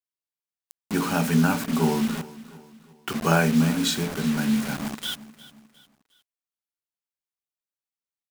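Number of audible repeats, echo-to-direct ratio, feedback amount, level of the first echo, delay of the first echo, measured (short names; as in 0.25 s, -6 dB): 3, -17.5 dB, 43%, -18.5 dB, 0.357 s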